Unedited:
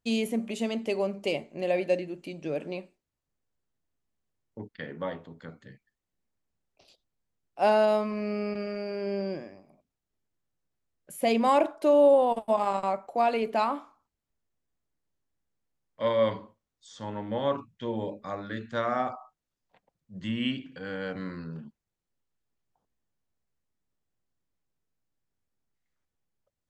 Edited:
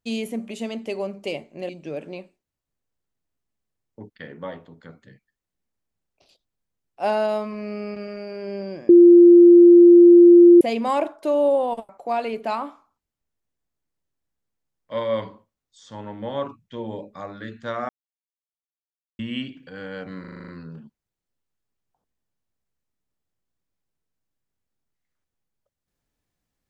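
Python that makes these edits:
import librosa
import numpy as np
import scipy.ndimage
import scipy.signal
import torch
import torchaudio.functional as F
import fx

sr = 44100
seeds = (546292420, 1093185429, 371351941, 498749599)

y = fx.edit(x, sr, fx.cut(start_s=1.69, length_s=0.59),
    fx.bleep(start_s=9.48, length_s=1.72, hz=347.0, db=-6.0),
    fx.cut(start_s=12.48, length_s=0.5),
    fx.silence(start_s=18.98, length_s=1.3),
    fx.stutter(start_s=21.29, slice_s=0.04, count=8), tone=tone)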